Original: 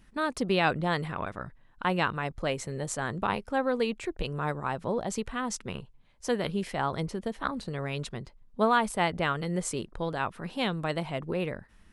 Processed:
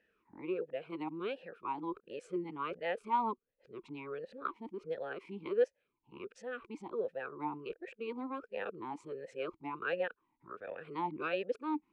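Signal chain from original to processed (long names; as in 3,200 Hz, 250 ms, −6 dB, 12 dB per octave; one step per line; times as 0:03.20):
played backwards from end to start
parametric band 930 Hz +5.5 dB 1.1 octaves
formant filter swept between two vowels e-u 1.4 Hz
level +1 dB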